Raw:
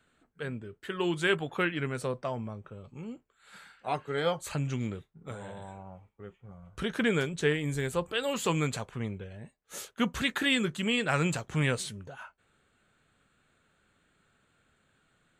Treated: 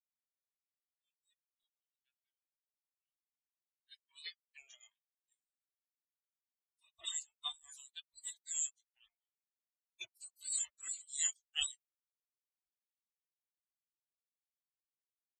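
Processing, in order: opening faded in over 4.22 s; spectral gate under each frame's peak -30 dB weak; high shelf 3100 Hz +7 dB; in parallel at -9.5 dB: sine folder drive 5 dB, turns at -26 dBFS; on the sum: outdoor echo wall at 180 m, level -13 dB; spectral expander 4:1; gain +3 dB

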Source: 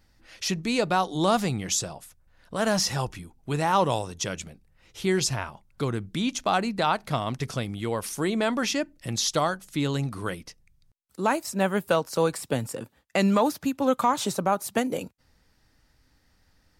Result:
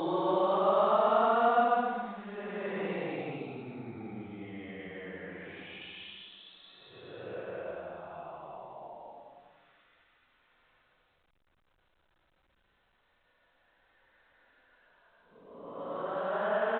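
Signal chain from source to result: three-band isolator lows -18 dB, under 290 Hz, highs -17 dB, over 2400 Hz; Paulstretch 12×, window 0.10 s, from 1.22; echo 0.115 s -22 dB; gain -4 dB; A-law 64 kbps 8000 Hz

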